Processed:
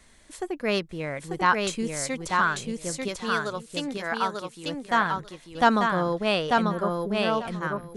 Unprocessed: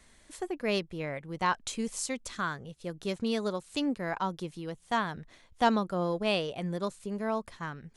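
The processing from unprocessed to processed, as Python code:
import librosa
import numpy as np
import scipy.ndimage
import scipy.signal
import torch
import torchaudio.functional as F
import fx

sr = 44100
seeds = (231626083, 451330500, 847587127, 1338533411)

p1 = fx.low_shelf(x, sr, hz=330.0, db=-11.5, at=(3.08, 4.66))
p2 = fx.brickwall_bandstop(p1, sr, low_hz=1700.0, high_hz=10000.0, at=(6.62, 7.23))
p3 = fx.dynamic_eq(p2, sr, hz=1400.0, q=1.9, threshold_db=-45.0, ratio=4.0, max_db=7)
p4 = p3 + fx.echo_feedback(p3, sr, ms=892, feedback_pct=16, wet_db=-3, dry=0)
y = p4 * librosa.db_to_amplitude(3.5)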